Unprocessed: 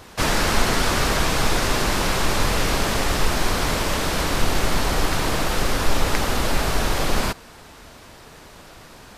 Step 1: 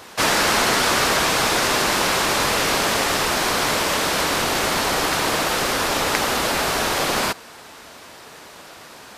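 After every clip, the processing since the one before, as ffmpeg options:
-af "highpass=f=390:p=1,volume=1.68"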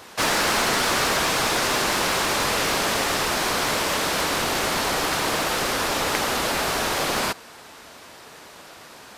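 -af "aeval=exprs='clip(val(0),-1,0.168)':c=same,volume=0.75"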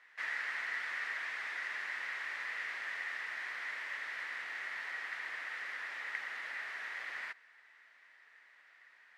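-af "bandpass=f=1900:t=q:w=7.8:csg=0,volume=0.531"

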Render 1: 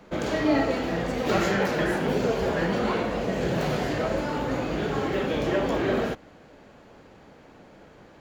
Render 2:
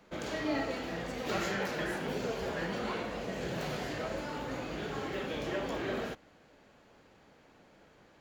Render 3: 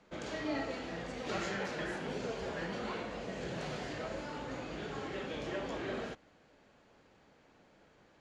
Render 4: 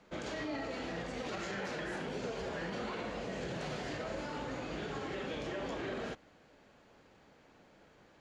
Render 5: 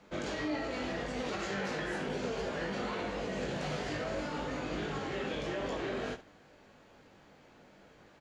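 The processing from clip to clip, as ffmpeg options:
-af "tiltshelf=f=1300:g=-3,volume=0.376"
-af "lowpass=f=8800:w=0.5412,lowpass=f=8800:w=1.3066,volume=0.668"
-af "alimiter=level_in=2.66:limit=0.0631:level=0:latency=1:release=58,volume=0.376,volume=1.26"
-af "aecho=1:1:20|72:0.531|0.2,volume=1.26"

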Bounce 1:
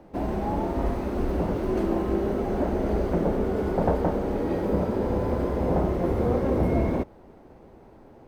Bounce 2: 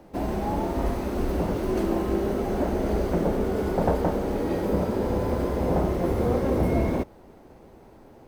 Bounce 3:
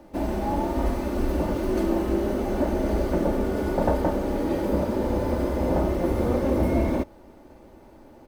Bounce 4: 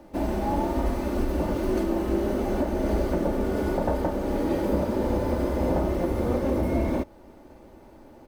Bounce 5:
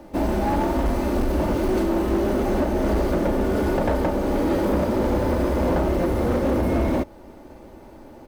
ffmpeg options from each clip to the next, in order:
-af "highshelf=f=3800:g=9.5"
-af "aecho=1:1:3.4:0.41"
-af "alimiter=limit=0.178:level=0:latency=1:release=279"
-af "volume=13.3,asoftclip=hard,volume=0.075,volume=1.88"

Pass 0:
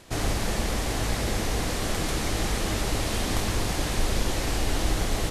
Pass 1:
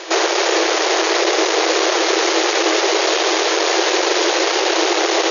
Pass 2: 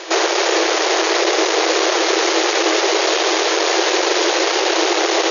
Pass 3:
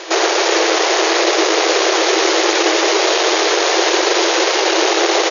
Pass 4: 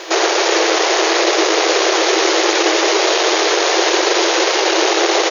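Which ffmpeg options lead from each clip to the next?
-filter_complex "[0:a]aeval=exprs='0.251*sin(PI/2*3.55*val(0)/0.251)':c=same,acrossover=split=460[s0][s1];[s1]acompressor=threshold=0.0891:ratio=6[s2];[s0][s2]amix=inputs=2:normalize=0,afftfilt=real='re*between(b*sr/4096,320,6900)':imag='im*between(b*sr/4096,320,6900)':win_size=4096:overlap=0.75,volume=2.24"
-af anull
-af "aecho=1:1:118:0.531,volume=1.12"
-af "acrusher=bits=8:mix=0:aa=0.000001"

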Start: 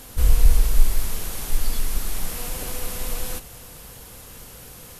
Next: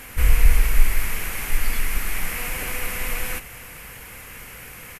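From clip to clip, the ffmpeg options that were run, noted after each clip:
-af "firequalizer=gain_entry='entry(620,0);entry(2200,15);entry(3600,-3);entry(13000,2)':delay=0.05:min_phase=1"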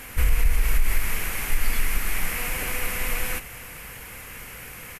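-af "alimiter=limit=0.299:level=0:latency=1:release=103"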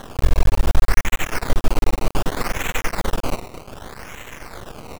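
-af "acrusher=samples=18:mix=1:aa=0.000001:lfo=1:lforange=18:lforate=0.65,aeval=exprs='max(val(0),0)':c=same,volume=2.37"

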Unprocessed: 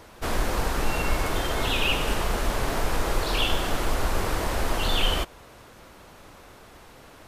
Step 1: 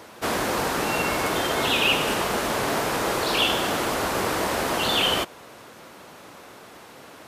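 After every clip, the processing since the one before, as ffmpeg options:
-af "highpass=160,volume=1.68"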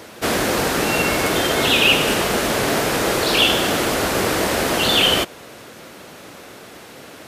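-af "equalizer=f=990:w=1.6:g=-6,volume=2.24"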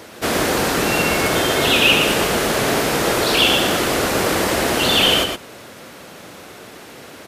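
-af "aecho=1:1:116:0.531"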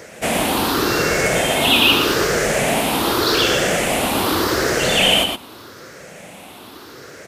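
-af "afftfilt=real='re*pow(10,9/40*sin(2*PI*(0.54*log(max(b,1)*sr/1024/100)/log(2)-(0.83)*(pts-256)/sr)))':imag='im*pow(10,9/40*sin(2*PI*(0.54*log(max(b,1)*sr/1024/100)/log(2)-(0.83)*(pts-256)/sr)))':win_size=1024:overlap=0.75,volume=0.891"

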